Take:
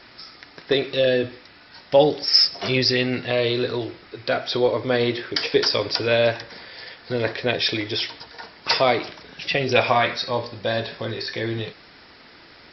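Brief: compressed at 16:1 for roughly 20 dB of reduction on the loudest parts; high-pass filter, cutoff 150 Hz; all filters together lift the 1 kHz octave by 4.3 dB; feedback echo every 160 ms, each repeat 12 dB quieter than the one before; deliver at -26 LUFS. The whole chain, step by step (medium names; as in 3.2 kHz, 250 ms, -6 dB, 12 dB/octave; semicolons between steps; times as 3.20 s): high-pass 150 Hz; peaking EQ 1 kHz +6 dB; compression 16:1, threshold -29 dBFS; feedback delay 160 ms, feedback 25%, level -12 dB; trim +7.5 dB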